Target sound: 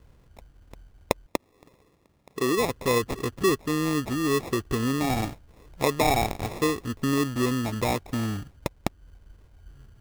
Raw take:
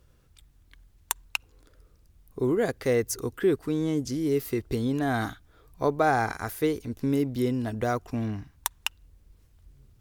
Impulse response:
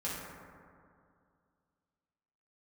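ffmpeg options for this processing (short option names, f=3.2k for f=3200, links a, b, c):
-filter_complex "[0:a]asettb=1/sr,asplit=3[a][b][c];[a]atrim=end=1.264[d];[b]atrim=start=1.26:end=2.66,asetpts=PTS-STARTPTS,afade=t=in:d=0.004:c=qsin,afade=t=out:st=1.396:d=0.004:c=qsin,highpass=180[e];[c]atrim=start=2.656[f];[d][e]acrossfade=d=0.004:c1=hsin:c2=qsin[g];[g][f]acrossfade=d=0.004:c1=qsin:c2=hsin,asplit=2[h][i];[i]acompressor=threshold=-36dB:ratio=6,volume=1dB[j];[h][j]amix=inputs=2:normalize=0,acrusher=samples=29:mix=1:aa=0.000001,volume=-1dB"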